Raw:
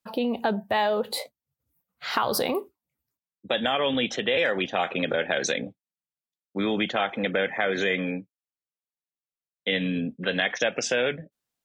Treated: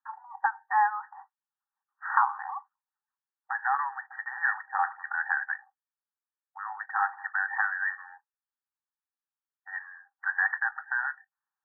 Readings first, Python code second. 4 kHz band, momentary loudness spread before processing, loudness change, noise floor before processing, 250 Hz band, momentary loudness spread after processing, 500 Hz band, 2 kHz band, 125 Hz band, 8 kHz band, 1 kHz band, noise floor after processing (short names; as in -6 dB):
under -40 dB, 8 LU, -3.5 dB, under -85 dBFS, under -40 dB, 15 LU, under -40 dB, +0.5 dB, under -40 dB, under -40 dB, +2.0 dB, under -85 dBFS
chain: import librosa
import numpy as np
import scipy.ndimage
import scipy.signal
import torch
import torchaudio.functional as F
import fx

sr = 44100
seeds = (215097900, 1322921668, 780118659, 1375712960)

y = fx.brickwall_bandpass(x, sr, low_hz=760.0, high_hz=1900.0)
y = y * 10.0 ** (3.0 / 20.0)